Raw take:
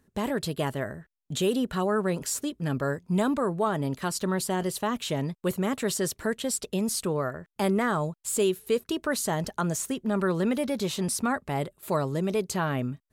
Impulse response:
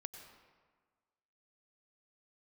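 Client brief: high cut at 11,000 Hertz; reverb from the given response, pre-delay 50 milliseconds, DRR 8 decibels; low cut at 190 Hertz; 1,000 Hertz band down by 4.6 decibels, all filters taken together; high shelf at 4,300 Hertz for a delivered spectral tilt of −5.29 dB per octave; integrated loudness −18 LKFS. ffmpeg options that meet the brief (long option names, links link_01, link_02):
-filter_complex "[0:a]highpass=190,lowpass=11000,equalizer=frequency=1000:width_type=o:gain=-5.5,highshelf=frequency=4300:gain=-9,asplit=2[link_01][link_02];[1:a]atrim=start_sample=2205,adelay=50[link_03];[link_02][link_03]afir=irnorm=-1:irlink=0,volume=-4dB[link_04];[link_01][link_04]amix=inputs=2:normalize=0,volume=12.5dB"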